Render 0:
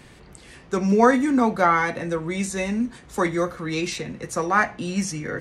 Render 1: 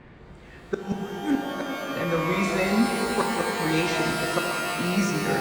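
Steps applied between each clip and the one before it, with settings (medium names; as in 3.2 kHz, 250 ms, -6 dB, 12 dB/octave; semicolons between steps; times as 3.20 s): level-controlled noise filter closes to 1.8 kHz, open at -14.5 dBFS; inverted gate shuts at -13 dBFS, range -32 dB; pitch-shifted reverb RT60 3.7 s, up +12 st, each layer -2 dB, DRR 2.5 dB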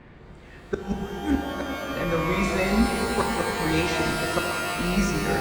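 octave divider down 2 oct, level -6 dB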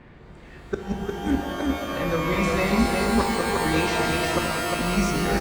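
delay 355 ms -3.5 dB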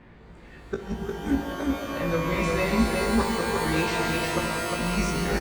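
doubling 18 ms -5.5 dB; trim -3.5 dB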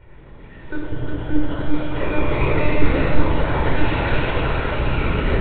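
octave divider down 1 oct, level -4 dB; monotone LPC vocoder at 8 kHz 300 Hz; reverberation RT60 1.4 s, pre-delay 25 ms, DRR 0.5 dB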